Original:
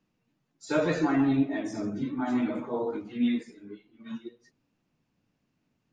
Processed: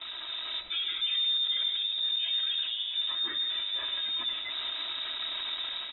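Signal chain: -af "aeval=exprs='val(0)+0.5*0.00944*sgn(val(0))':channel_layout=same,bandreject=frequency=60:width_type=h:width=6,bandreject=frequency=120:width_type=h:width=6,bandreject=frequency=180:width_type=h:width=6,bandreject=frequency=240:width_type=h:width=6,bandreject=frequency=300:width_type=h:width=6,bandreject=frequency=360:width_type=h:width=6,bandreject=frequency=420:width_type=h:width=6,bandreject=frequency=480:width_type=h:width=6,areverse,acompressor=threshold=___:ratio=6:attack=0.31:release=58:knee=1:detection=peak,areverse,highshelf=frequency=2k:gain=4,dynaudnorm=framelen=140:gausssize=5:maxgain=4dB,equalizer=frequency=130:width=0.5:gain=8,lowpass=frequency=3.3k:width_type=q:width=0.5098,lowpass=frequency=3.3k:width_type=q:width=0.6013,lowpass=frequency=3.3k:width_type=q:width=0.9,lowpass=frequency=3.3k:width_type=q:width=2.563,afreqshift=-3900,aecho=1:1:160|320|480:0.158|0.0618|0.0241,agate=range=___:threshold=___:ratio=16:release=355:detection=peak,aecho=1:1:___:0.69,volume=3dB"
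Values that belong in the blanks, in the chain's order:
-42dB, -11dB, -49dB, 3.1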